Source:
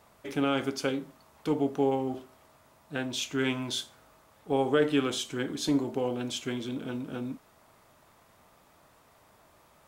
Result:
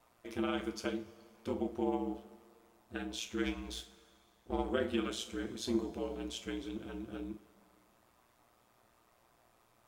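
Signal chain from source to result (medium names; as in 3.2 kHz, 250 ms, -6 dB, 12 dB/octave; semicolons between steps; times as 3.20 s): 3.45–4.70 s: partial rectifier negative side -7 dB; ring modulator 59 Hz; two-slope reverb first 0.24 s, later 2.3 s, from -19 dB, DRR 6.5 dB; trim -6 dB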